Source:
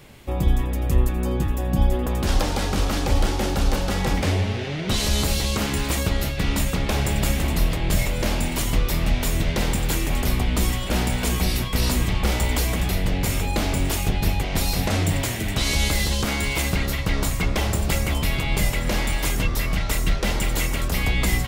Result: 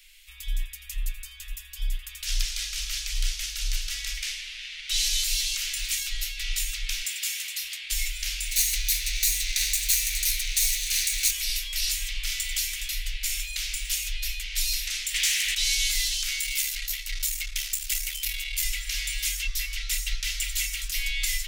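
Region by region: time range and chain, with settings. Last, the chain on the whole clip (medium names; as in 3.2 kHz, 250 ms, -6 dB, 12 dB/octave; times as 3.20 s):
7.00–7.90 s: high-pass 310 Hz + hard clipper -20 dBFS
8.51–11.31 s: comb filter that takes the minimum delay 0.47 ms + treble shelf 2.8 kHz +8.5 dB
15.14–15.55 s: overdrive pedal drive 18 dB, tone 7 kHz, clips at -12 dBFS + loudspeaker Doppler distortion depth 0.21 ms
16.39–18.64 s: valve stage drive 15 dB, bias 0.6 + treble shelf 9.8 kHz +10.5 dB
whole clip: inverse Chebyshev band-stop 110–610 Hz, stop band 70 dB; dynamic bell 6 kHz, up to +4 dB, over -44 dBFS, Q 2.3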